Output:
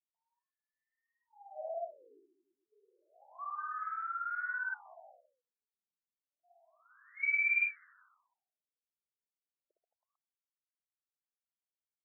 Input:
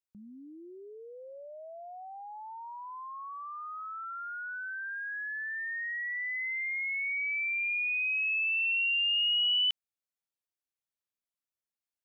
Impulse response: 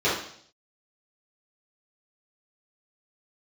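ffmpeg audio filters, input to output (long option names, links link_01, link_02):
-af "afwtdn=0.0112,equalizer=frequency=670:width=6.2:gain=7,aecho=1:1:60|132|218.4|322.1|446.5:0.631|0.398|0.251|0.158|0.1,afftfilt=real='re*between(b*sr/1024,280*pow(1800/280,0.5+0.5*sin(2*PI*0.3*pts/sr))/1.41,280*pow(1800/280,0.5+0.5*sin(2*PI*0.3*pts/sr))*1.41)':imag='im*between(b*sr/1024,280*pow(1800/280,0.5+0.5*sin(2*PI*0.3*pts/sr))/1.41,280*pow(1800/280,0.5+0.5*sin(2*PI*0.3*pts/sr))*1.41)':win_size=1024:overlap=0.75"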